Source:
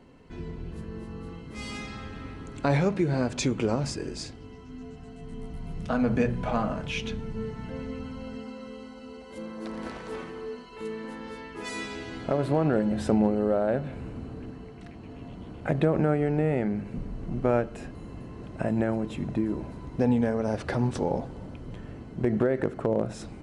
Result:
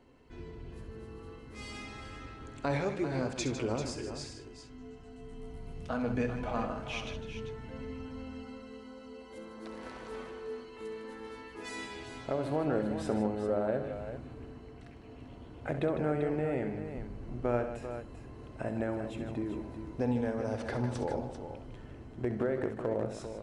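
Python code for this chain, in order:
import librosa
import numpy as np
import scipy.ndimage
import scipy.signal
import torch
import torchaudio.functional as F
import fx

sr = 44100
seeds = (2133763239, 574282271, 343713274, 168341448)

y = fx.peak_eq(x, sr, hz=180.0, db=-10.0, octaves=0.44)
y = fx.echo_multitap(y, sr, ms=(66, 154, 392), db=(-10.5, -10.5, -9.5))
y = F.gain(torch.from_numpy(y), -6.5).numpy()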